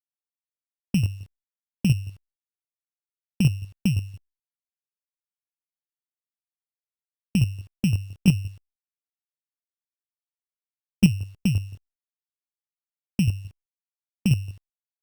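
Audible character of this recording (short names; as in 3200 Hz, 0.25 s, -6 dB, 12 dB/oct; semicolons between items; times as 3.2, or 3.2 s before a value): a buzz of ramps at a fixed pitch in blocks of 16 samples; chopped level 5.8 Hz, depth 60%, duty 15%; a quantiser's noise floor 12-bit, dither none; Opus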